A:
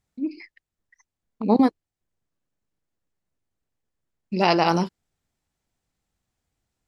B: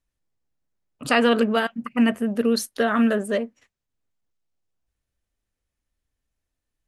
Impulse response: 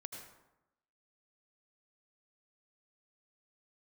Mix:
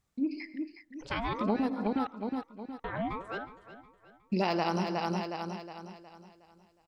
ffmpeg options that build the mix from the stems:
-filter_complex "[0:a]deesser=0.55,volume=-2dB,asplit=3[link_01][link_02][link_03];[link_02]volume=-5.5dB[link_04];[link_03]volume=-7.5dB[link_05];[1:a]lowpass=frequency=5900:width=0.5412,lowpass=frequency=5900:width=1.3066,aeval=exprs='val(0)*sin(2*PI*700*n/s+700*0.7/0.55*sin(2*PI*0.55*n/s))':channel_layout=same,volume=-12.5dB,asplit=3[link_06][link_07][link_08];[link_06]atrim=end=2.07,asetpts=PTS-STARTPTS,afade=type=out:start_time=2.066:duration=0.004:curve=hsin[link_09];[link_07]atrim=start=2.07:end=2.84,asetpts=PTS-STARTPTS,volume=0[link_10];[link_08]atrim=start=2.84,asetpts=PTS-STARTPTS,afade=type=in:duration=0.004:curve=hsin[link_11];[link_09][link_10][link_11]concat=n=3:v=0:a=1,asplit=4[link_12][link_13][link_14][link_15];[link_13]volume=-16.5dB[link_16];[link_14]volume=-13.5dB[link_17];[link_15]apad=whole_len=303008[link_18];[link_01][link_18]sidechaincompress=threshold=-36dB:ratio=8:attack=16:release=270[link_19];[2:a]atrim=start_sample=2205[link_20];[link_04][link_16]amix=inputs=2:normalize=0[link_21];[link_21][link_20]afir=irnorm=-1:irlink=0[link_22];[link_05][link_17]amix=inputs=2:normalize=0,aecho=0:1:364|728|1092|1456|1820|2184:1|0.41|0.168|0.0689|0.0283|0.0116[link_23];[link_19][link_12][link_22][link_23]amix=inputs=4:normalize=0,acompressor=threshold=-26dB:ratio=6"

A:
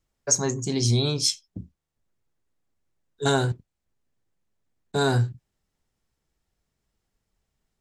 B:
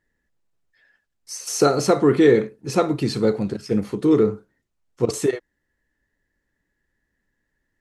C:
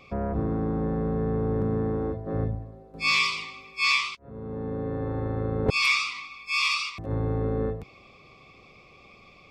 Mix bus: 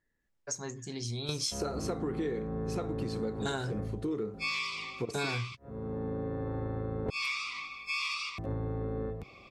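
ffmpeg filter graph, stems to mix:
ffmpeg -i stem1.wav -i stem2.wav -i stem3.wav -filter_complex "[0:a]equalizer=frequency=2000:width=0.65:gain=5,adelay=200,volume=-1dB[link_01];[1:a]volume=-7dB,asplit=2[link_02][link_03];[2:a]adelay=1400,volume=-1dB[link_04];[link_03]apad=whole_len=352891[link_05];[link_01][link_05]sidechaingate=range=-13dB:threshold=-55dB:ratio=16:detection=peak[link_06];[link_06][link_02][link_04]amix=inputs=3:normalize=0,acompressor=threshold=-32dB:ratio=5" out.wav

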